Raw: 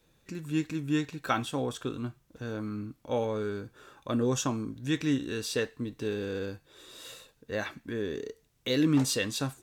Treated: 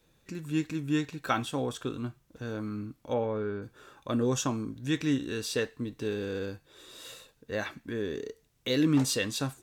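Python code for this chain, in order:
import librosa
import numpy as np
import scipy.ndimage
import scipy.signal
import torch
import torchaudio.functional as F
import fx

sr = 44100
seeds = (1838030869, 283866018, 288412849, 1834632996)

y = fx.lowpass(x, sr, hz=2200.0, slope=12, at=(3.13, 3.61), fade=0.02)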